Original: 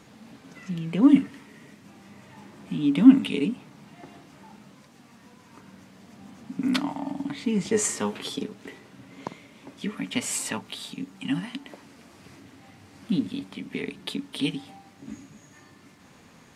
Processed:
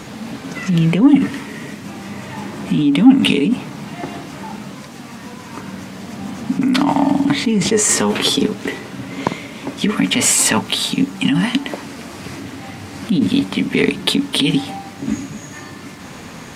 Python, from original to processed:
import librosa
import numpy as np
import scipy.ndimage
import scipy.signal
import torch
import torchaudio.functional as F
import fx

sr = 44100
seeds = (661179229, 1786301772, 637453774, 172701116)

p1 = fx.over_compress(x, sr, threshold_db=-31.0, ratio=-0.5)
p2 = x + (p1 * librosa.db_to_amplitude(3.0))
p3 = 10.0 ** (-8.5 / 20.0) * np.tanh(p2 / 10.0 ** (-8.5 / 20.0))
y = p3 * librosa.db_to_amplitude(7.5)